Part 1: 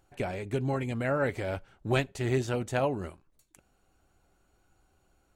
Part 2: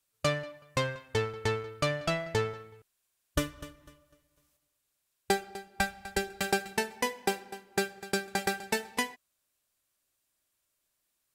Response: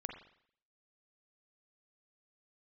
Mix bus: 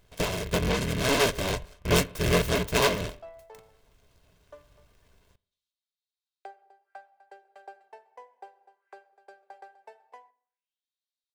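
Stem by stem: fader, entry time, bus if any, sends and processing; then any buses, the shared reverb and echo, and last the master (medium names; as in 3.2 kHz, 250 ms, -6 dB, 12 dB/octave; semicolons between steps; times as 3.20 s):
+2.0 dB, 0.00 s, send -13 dB, cycle switcher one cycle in 3, inverted; rippled EQ curve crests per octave 1.6, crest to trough 7 dB; delay time shaken by noise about 2.1 kHz, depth 0.16 ms
-10.0 dB, 1.15 s, send -11 dB, treble shelf 4 kHz +5 dB; auto-wah 740–4000 Hz, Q 4.1, down, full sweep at -37 dBFS; high-pass 300 Hz 24 dB/octave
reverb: on, RT60 0.60 s, pre-delay 40 ms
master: comb 1.9 ms, depth 37%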